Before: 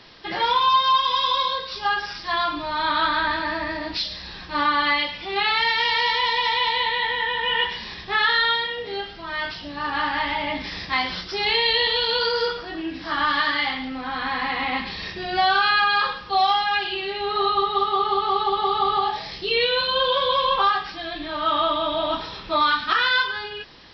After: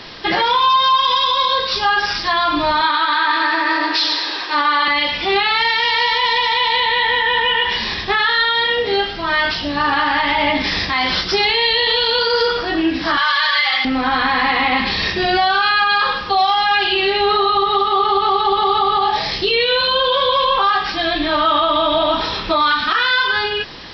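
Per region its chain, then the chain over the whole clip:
2.81–4.88 s: high-pass 330 Hz 24 dB/octave + band-stop 630 Hz, Q 7 + two-band feedback delay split 1.7 kHz, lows 238 ms, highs 106 ms, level -9 dB
13.17–13.85 s: high-pass 810 Hz + treble shelf 5 kHz +9 dB + comb 5.3 ms, depth 90%
whole clip: compression 2:1, threshold -25 dBFS; hum notches 60/120/180 Hz; loudness maximiser +19.5 dB; trim -6.5 dB

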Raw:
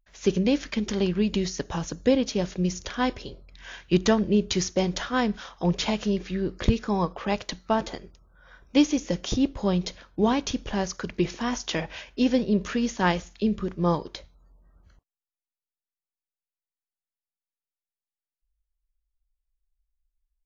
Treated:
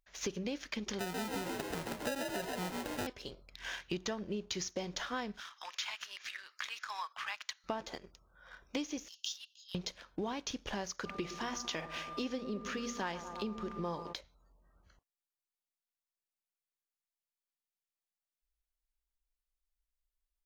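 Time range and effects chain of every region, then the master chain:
0.99–3.07 s: sample-rate reducer 1.1 kHz + frequency-shifting echo 135 ms, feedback 58%, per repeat +61 Hz, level -5 dB
5.40–7.64 s: high-pass 1.2 kHz 24 dB/octave + dynamic bell 5.1 kHz, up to -6 dB, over -46 dBFS, Q 0.7
9.08–9.75 s: compression 2:1, threshold -29 dBFS + Chebyshev high-pass 2.7 kHz, order 8 + tape noise reduction on one side only decoder only
11.04–14.12 s: hum notches 60/120/180/240 Hz + whistle 1.2 kHz -41 dBFS + bucket-brigade echo 111 ms, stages 1024, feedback 67%, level -14 dB
whole clip: bass shelf 350 Hz -9 dB; waveshaping leveller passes 1; compression 5:1, threshold -37 dBFS

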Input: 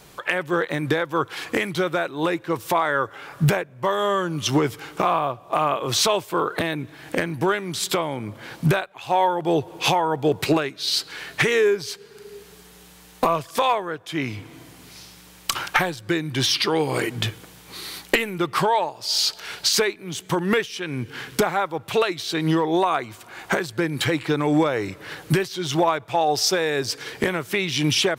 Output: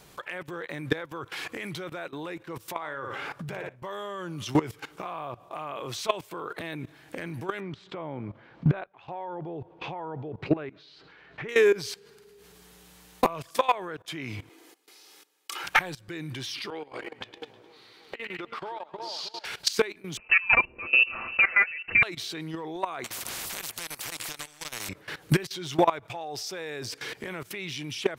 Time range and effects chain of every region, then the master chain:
2.78–3.76 s: treble shelf 7.8 kHz -8.5 dB + flutter echo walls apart 9.9 m, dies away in 0.3 s + compressor with a negative ratio -25 dBFS
7.60–11.49 s: tape spacing loss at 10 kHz 44 dB + tape noise reduction on one side only encoder only
14.49–15.64 s: gate with hold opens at -35 dBFS, closes at -38 dBFS + Chebyshev high-pass 320 Hz, order 3 + comb 2.4 ms, depth 46%
16.70–19.45 s: three-band isolator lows -15 dB, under 240 Hz, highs -19 dB, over 4.8 kHz + two-band feedback delay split 1.1 kHz, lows 312 ms, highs 105 ms, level -9.5 dB + compression 12:1, threshold -31 dBFS
20.17–22.03 s: bass shelf 140 Hz +10 dB + comb 7.4 ms, depth 68% + frequency inversion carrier 2.8 kHz
23.04–24.89 s: compression 8:1, threshold -24 dBFS + treble shelf 3.2 kHz +4 dB + spectrum-flattening compressor 10:1
whole clip: dynamic bell 2.3 kHz, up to +3 dB, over -40 dBFS, Q 2.4; level held to a coarse grid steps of 18 dB

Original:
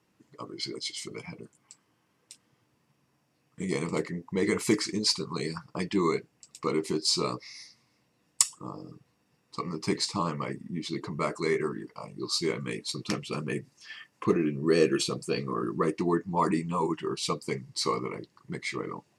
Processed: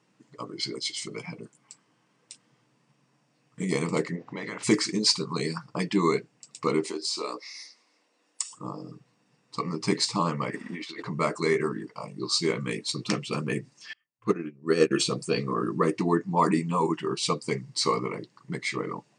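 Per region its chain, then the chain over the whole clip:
4.15–4.62 s: spectral peaks clipped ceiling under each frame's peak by 18 dB + compression 4:1, threshold -35 dBFS + distance through air 170 m
6.87–8.53 s: high-pass 300 Hz 24 dB/octave + compression 3:1, threshold -32 dBFS
10.50–11.07 s: high-pass 360 Hz + peaking EQ 1.6 kHz +13.5 dB 2.7 oct + compressor with a negative ratio -41 dBFS
13.93–14.91 s: dynamic bell 1.4 kHz, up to +8 dB, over -55 dBFS, Q 6 + upward expansion 2.5:1, over -40 dBFS
whole clip: FFT band-pass 110–9700 Hz; band-stop 360 Hz, Q 12; trim +3.5 dB

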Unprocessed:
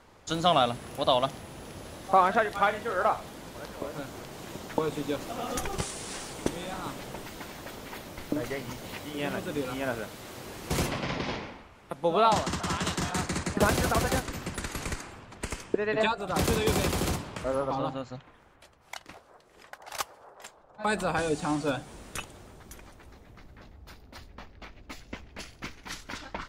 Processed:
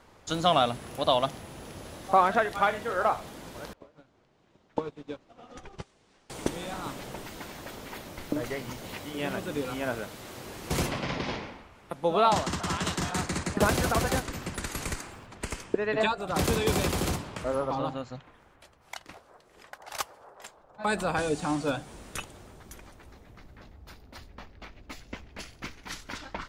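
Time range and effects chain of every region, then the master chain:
3.73–6.30 s: distance through air 110 m + upward expansion 2.5:1, over -39 dBFS
14.63–15.26 s: treble shelf 8.3 kHz +6 dB + added noise pink -68 dBFS
whole clip: none

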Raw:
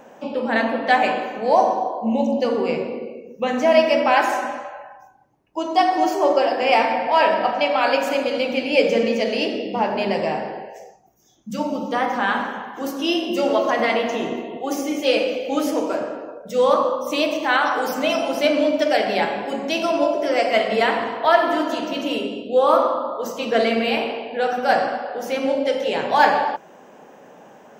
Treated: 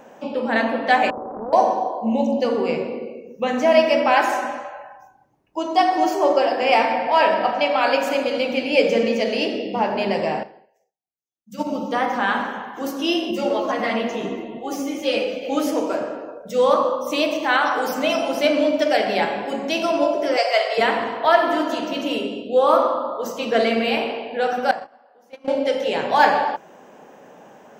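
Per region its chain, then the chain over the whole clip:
1.10–1.53 s: compression 12:1, threshold -25 dBFS + steep low-pass 900 Hz + loudspeaker Doppler distortion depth 0.49 ms
10.43–11.67 s: treble shelf 9.4 kHz +9 dB + upward expansion 2.5:1, over -49 dBFS
13.31–15.43 s: bass shelf 160 Hz +9.5 dB + three-phase chorus
20.37–20.78 s: steep high-pass 480 Hz + peaking EQ 4.8 kHz +9.5 dB 0.29 oct
24.71–25.48 s: gate -20 dBFS, range -27 dB + peaking EQ 980 Hz +5.5 dB 0.78 oct + compression 2:1, threshold -38 dBFS
whole clip: none

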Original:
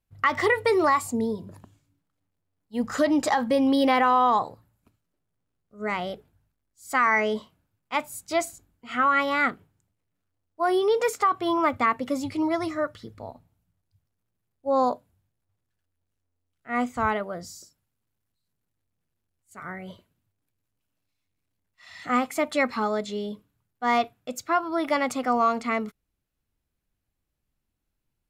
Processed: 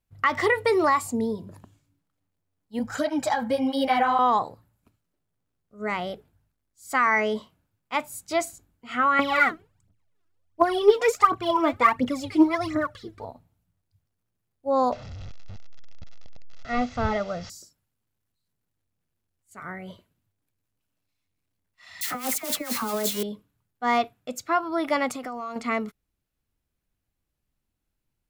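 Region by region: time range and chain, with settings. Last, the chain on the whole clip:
2.79–4.19 s: comb 1.3 ms, depth 53% + de-hum 170.4 Hz, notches 15 + cancelling through-zero flanger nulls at 1.6 Hz, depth 7.5 ms
9.19–13.25 s: treble shelf 9.5 kHz -9.5 dB + phaser 1.4 Hz, delay 3.2 ms, feedback 75%
14.92–17.50 s: one-bit delta coder 32 kbps, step -39 dBFS + bass shelf 120 Hz +9 dB + comb 1.5 ms, depth 51%
22.01–23.23 s: zero-crossing glitches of -22 dBFS + compressor with a negative ratio -27 dBFS, ratio -0.5 + phase dispersion lows, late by 59 ms, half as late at 1.4 kHz
25.10–25.56 s: treble shelf 8.8 kHz +6.5 dB + compression 12:1, threshold -30 dBFS
whole clip: none

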